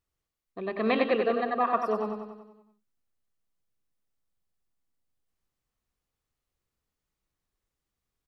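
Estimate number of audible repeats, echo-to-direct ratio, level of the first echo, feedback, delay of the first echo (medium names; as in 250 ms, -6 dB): 6, -4.5 dB, -6.0 dB, 57%, 94 ms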